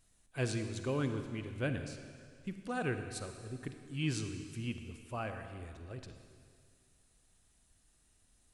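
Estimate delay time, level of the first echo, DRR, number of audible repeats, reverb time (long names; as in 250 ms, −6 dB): no echo audible, no echo audible, 7.0 dB, no echo audible, 2.1 s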